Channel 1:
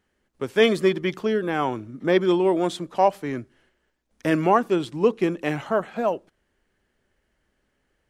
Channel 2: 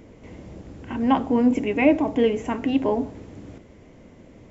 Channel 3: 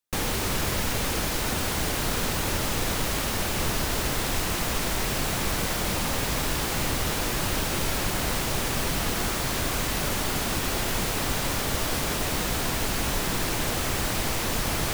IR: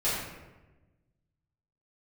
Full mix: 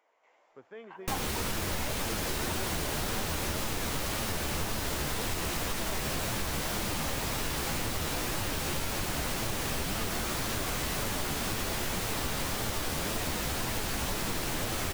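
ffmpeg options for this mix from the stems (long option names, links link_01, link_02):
-filter_complex "[0:a]lowpass=1700,lowshelf=frequency=360:gain=-10,alimiter=limit=-17.5dB:level=0:latency=1:release=282,adelay=150,volume=-18.5dB[link_01];[1:a]highpass=frequency=860:width=0.5412,highpass=frequency=860:width=1.3066,tiltshelf=frequency=1300:gain=8.5,volume=-7dB[link_02];[2:a]adelay=950,volume=3dB[link_03];[link_02][link_03]amix=inputs=2:normalize=0,flanger=delay=8.9:depth=5.3:regen=46:speed=1.9:shape=sinusoidal,acompressor=threshold=-29dB:ratio=4,volume=0dB[link_04];[link_01][link_04]amix=inputs=2:normalize=0"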